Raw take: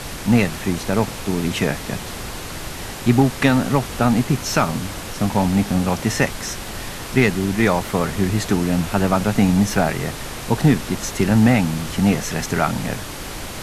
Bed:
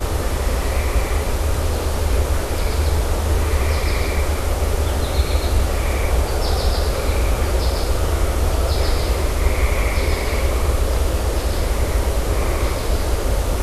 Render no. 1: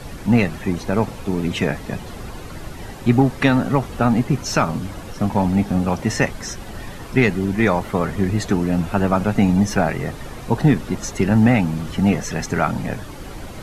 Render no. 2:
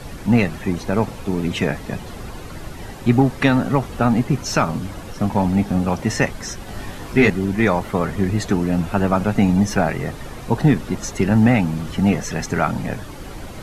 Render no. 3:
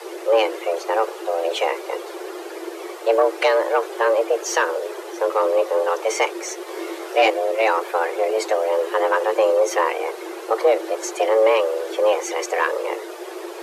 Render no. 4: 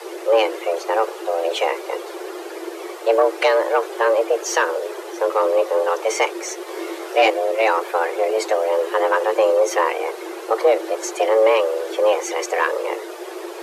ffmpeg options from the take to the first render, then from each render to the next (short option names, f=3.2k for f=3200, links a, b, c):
-af "afftdn=nr=11:nf=-31"
-filter_complex "[0:a]asettb=1/sr,asplit=3[a][b][c];[a]atrim=end=6.664[d];[b]atrim=start=6.66:end=7.3,asetpts=PTS-STARTPTS,afade=t=in:d=0.004:c=qsin,afade=t=out:st=0.636:d=0.004:c=qsin,asplit=2[e][f];[f]adelay=20,volume=-3dB[g];[e][g]amix=inputs=2:normalize=0,atrim=end_sample=28224[h];[c]atrim=start=7.296[i];[d][h]acrossfade=d=0.004:c1=hsin:c2=qsin[j];[j][i]acrossfade=d=0.004:c1=qsin:c2=hsin"
-af "aeval=exprs='(tanh(2.24*val(0)+0.2)-tanh(0.2))/2.24':c=same,afreqshift=330"
-af "volume=1dB"